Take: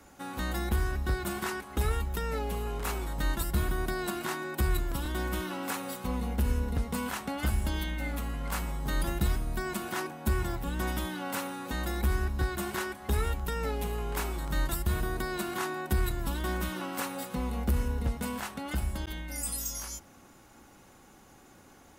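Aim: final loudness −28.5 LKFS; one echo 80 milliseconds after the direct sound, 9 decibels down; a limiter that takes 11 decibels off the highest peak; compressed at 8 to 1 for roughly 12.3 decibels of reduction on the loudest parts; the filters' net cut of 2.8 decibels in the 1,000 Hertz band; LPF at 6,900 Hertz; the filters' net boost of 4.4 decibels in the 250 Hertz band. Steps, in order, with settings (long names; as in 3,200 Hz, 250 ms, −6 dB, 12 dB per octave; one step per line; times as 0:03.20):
low-pass filter 6,900 Hz
parametric band 250 Hz +6 dB
parametric band 1,000 Hz −4 dB
downward compressor 8 to 1, threshold −35 dBFS
brickwall limiter −35 dBFS
single-tap delay 80 ms −9 dB
level +15 dB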